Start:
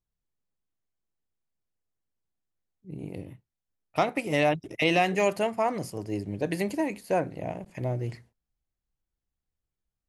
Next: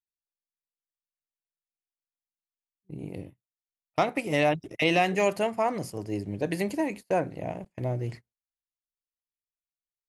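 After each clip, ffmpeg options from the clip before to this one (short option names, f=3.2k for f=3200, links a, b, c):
-af "agate=range=-26dB:threshold=-40dB:ratio=16:detection=peak"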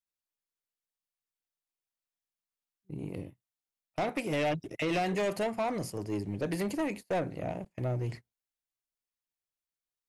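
-filter_complex "[0:a]acrossover=split=660[a][b];[b]alimiter=limit=-21.5dB:level=0:latency=1:release=42[c];[a][c]amix=inputs=2:normalize=0,asoftclip=type=tanh:threshold=-25.5dB"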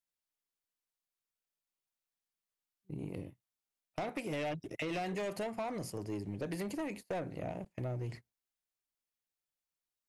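-af "acompressor=threshold=-36dB:ratio=3,volume=-1dB"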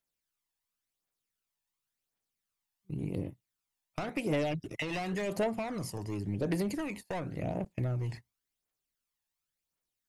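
-af "aphaser=in_gain=1:out_gain=1:delay=1.2:decay=0.5:speed=0.92:type=triangular,volume=2.5dB"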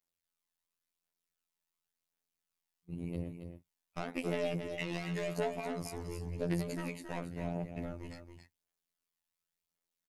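-af "afftfilt=real='hypot(re,im)*cos(PI*b)':imag='0':win_size=2048:overlap=0.75,aecho=1:1:274:0.398"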